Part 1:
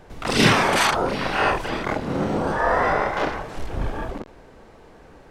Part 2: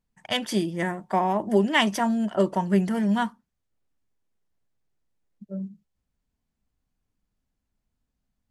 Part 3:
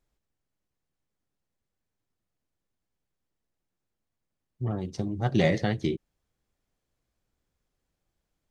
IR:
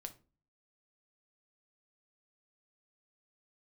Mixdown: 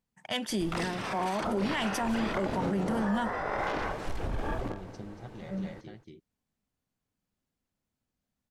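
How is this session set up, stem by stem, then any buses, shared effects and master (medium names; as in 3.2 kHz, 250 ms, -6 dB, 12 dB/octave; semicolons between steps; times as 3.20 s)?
-6.5 dB, 0.50 s, no send, echo send -14.5 dB, compressor with a negative ratio -25 dBFS, ratio -1
-2.5 dB, 0.00 s, no send, no echo send, high-pass 98 Hz
-12.0 dB, 0.00 s, no send, echo send -11 dB, auto duck -12 dB, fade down 0.35 s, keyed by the second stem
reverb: none
echo: delay 233 ms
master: peak limiter -21.5 dBFS, peak gain reduction 12 dB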